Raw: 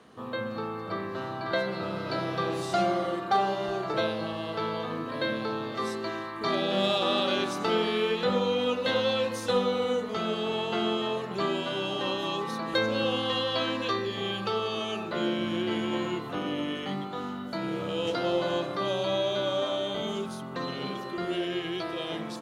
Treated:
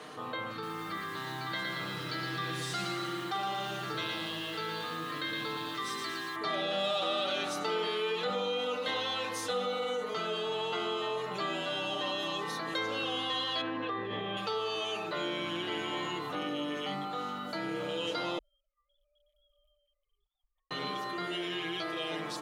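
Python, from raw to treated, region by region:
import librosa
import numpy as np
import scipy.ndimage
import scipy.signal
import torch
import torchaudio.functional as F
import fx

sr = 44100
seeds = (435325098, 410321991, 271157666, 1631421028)

y = fx.chain(x, sr, fx.highpass(hz=45.0, slope=12),
    fx.peak_eq(hz=630.0, db=-14.0, octaves=1.1),
    fx.echo_crushed(ms=115, feedback_pct=55, bits=9, wet_db=-4), at=(0.51, 6.36))
y = fx.chain(y, sr, fx.spacing_loss(db_at_10k=44),
    fx.env_flatten(amount_pct=100), at=(13.61, 14.37))
y = fx.chain(y, sr, fx.sine_speech(),
    fx.cheby2_bandstop(low_hz=240.0, high_hz=2900.0, order=4, stop_db=80), at=(18.38, 20.71))
y = fx.low_shelf(y, sr, hz=320.0, db=-11.0)
y = y + 0.73 * np.pad(y, (int(6.6 * sr / 1000.0), 0))[:len(y)]
y = fx.env_flatten(y, sr, amount_pct=50)
y = F.gain(torch.from_numpy(y), -7.0).numpy()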